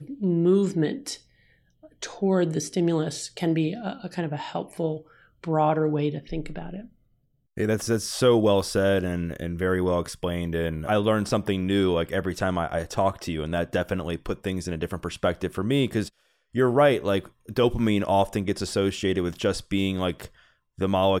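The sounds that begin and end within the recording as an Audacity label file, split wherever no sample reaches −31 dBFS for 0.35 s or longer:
2.020000	4.970000	sound
5.440000	6.790000	sound
7.570000	16.080000	sound
16.550000	20.260000	sound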